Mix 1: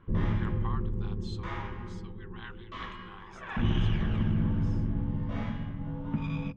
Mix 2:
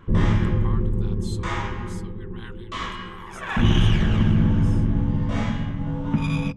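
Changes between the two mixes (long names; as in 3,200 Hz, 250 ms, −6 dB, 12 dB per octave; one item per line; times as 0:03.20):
background +9.0 dB
master: remove high-frequency loss of the air 180 metres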